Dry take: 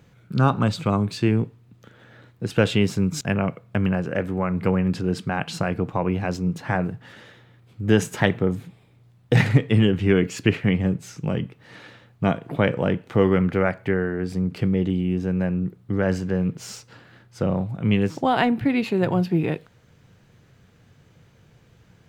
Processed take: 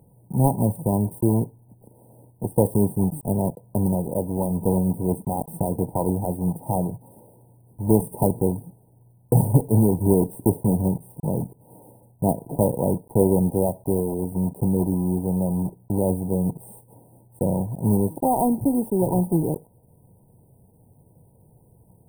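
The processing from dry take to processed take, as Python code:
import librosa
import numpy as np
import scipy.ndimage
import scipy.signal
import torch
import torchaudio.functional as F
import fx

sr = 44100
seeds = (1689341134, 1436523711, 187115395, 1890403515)

y = fx.block_float(x, sr, bits=3)
y = fx.brickwall_bandstop(y, sr, low_hz=1000.0, high_hz=8300.0)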